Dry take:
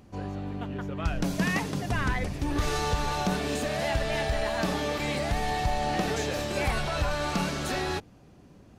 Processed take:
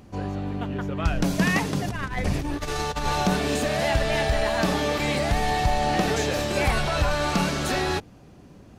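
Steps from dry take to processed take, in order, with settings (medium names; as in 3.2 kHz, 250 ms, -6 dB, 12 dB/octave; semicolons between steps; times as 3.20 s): 1.88–3.06 s: compressor with a negative ratio -31 dBFS, ratio -0.5; trim +5 dB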